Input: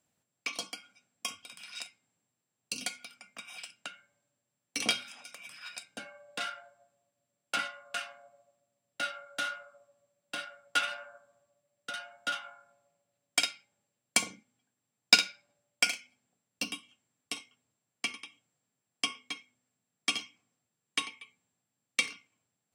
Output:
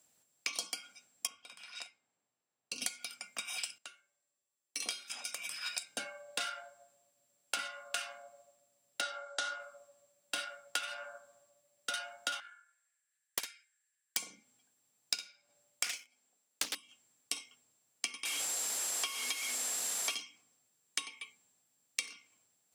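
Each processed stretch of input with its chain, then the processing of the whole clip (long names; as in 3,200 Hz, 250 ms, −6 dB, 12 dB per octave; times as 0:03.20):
0:01.27–0:02.82: low-pass filter 1,100 Hz 6 dB per octave + low-shelf EQ 470 Hz −9 dB
0:03.78–0:05.10: low-shelf EQ 200 Hz −9 dB + tuned comb filter 380 Hz, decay 0.24 s, harmonics odd, mix 80%
0:09.01–0:09.60: loudspeaker in its box 320–8,100 Hz, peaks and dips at 420 Hz +9 dB, 820 Hz +4 dB, 2,500 Hz −8 dB + mains-hum notches 60/120/180/240/300/360/420/480 Hz
0:12.40–0:14.17: four-pole ladder high-pass 1,600 Hz, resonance 80% + parametric band 8,700 Hz +7.5 dB 0.57 octaves + highs frequency-modulated by the lows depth 0.95 ms
0:15.84–0:16.75: high-pass filter 250 Hz + leveller curve on the samples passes 2 + highs frequency-modulated by the lows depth 0.84 ms
0:18.25–0:20.15: linear delta modulator 64 kbit/s, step −37 dBFS + high-pass filter 430 Hz + leveller curve on the samples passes 1
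whole clip: bass and treble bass −8 dB, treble +8 dB; downward compressor 20 to 1, threshold −36 dBFS; level +3.5 dB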